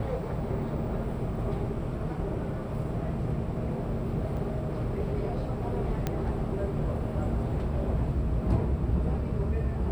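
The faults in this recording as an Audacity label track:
4.370000	4.370000	dropout 3.7 ms
6.070000	6.070000	pop -15 dBFS

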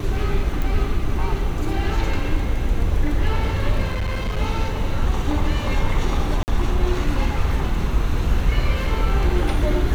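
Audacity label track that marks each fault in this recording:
0.620000	0.620000	pop
3.910000	4.390000	clipped -19.5 dBFS
6.430000	6.480000	dropout 49 ms

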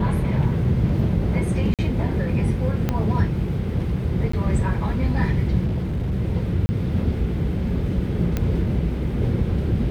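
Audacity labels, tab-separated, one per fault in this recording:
1.740000	1.790000	dropout 47 ms
2.890000	2.890000	pop -9 dBFS
4.320000	4.330000	dropout 14 ms
5.650000	6.140000	clipped -20.5 dBFS
6.660000	6.690000	dropout 30 ms
8.370000	8.370000	pop -10 dBFS

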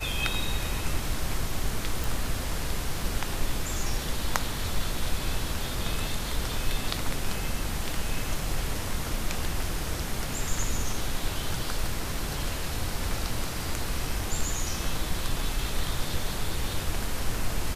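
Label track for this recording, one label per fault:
2.040000	2.040000	pop

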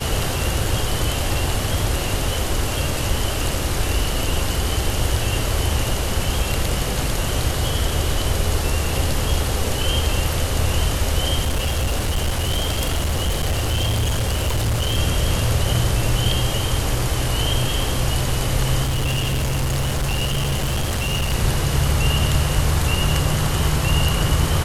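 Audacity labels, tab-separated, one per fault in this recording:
11.430000	14.980000	clipped -16.5 dBFS
18.830000	21.340000	clipped -17.5 dBFS

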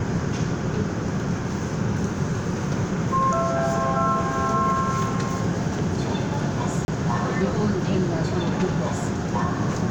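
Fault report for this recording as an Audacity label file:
6.850000	6.880000	dropout 31 ms

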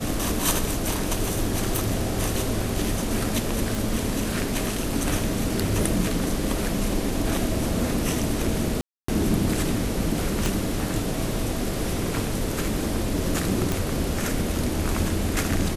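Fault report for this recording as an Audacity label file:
1.760000	1.760000	pop
3.750000	3.750000	pop
8.810000	9.080000	dropout 274 ms
10.460000	10.460000	pop
13.720000	13.720000	pop

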